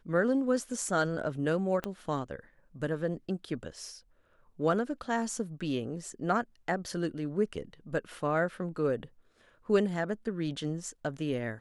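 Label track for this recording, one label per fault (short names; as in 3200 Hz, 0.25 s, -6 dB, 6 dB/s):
1.840000	1.840000	pop -20 dBFS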